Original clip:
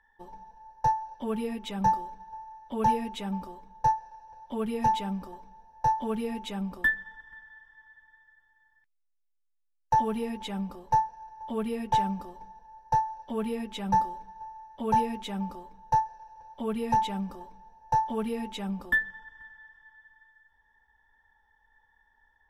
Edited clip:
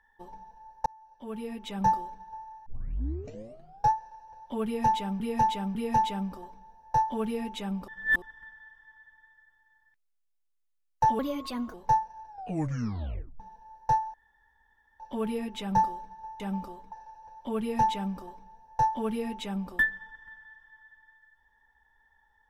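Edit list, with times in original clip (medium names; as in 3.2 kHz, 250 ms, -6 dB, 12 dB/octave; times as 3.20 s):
0.86–1.89 s: fade in
2.66 s: tape start 1.24 s
4.65–5.20 s: loop, 3 plays
6.78–7.12 s: reverse
10.09–10.77 s: speed 124%
11.31 s: tape stop 1.12 s
13.17 s: insert room tone 0.86 s
14.57–15.27 s: delete
15.79–16.05 s: delete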